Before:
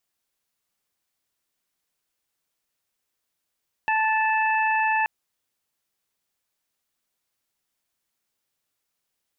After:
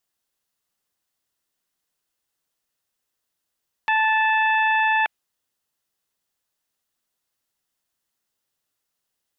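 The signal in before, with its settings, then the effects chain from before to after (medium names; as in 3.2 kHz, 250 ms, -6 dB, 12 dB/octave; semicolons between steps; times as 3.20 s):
steady additive tone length 1.18 s, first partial 876 Hz, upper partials -3/-6 dB, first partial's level -21.5 dB
band-stop 2.3 kHz, Q 11; dynamic bell 2.4 kHz, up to +5 dB, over -35 dBFS, Q 0.92; loudspeaker Doppler distortion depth 0.43 ms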